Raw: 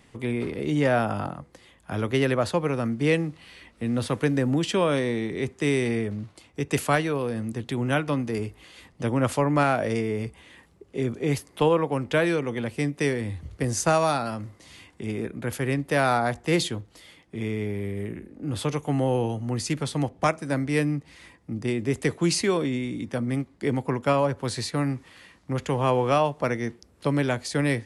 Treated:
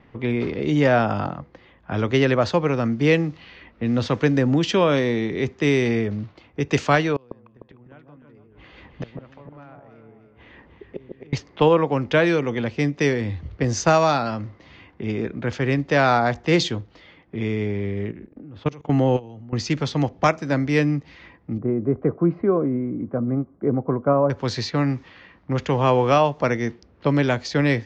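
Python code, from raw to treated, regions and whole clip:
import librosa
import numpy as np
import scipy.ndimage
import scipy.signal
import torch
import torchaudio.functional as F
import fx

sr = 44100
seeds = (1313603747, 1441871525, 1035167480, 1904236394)

y = fx.chain(x, sr, fx.low_shelf(hz=75.0, db=5.0),
    fx.gate_flip(shuts_db=-23.0, range_db=-29),
    fx.echo_alternate(ms=151, hz=1100.0, feedback_pct=63, wet_db=-4.0), at=(7.16, 11.33))
y = fx.chain(y, sr, fx.peak_eq(hz=220.0, db=2.5, octaves=2.1),
    fx.level_steps(step_db=22), at=(18.11, 19.53))
y = fx.chain(y, sr, fx.lowpass(hz=1200.0, slope=24),
    fx.notch_comb(f0_hz=900.0), at=(21.58, 24.3))
y = scipy.signal.sosfilt(scipy.signal.butter(8, 6600.0, 'lowpass', fs=sr, output='sos'), y)
y = fx.env_lowpass(y, sr, base_hz=1900.0, full_db=-21.0)
y = y * librosa.db_to_amplitude(4.5)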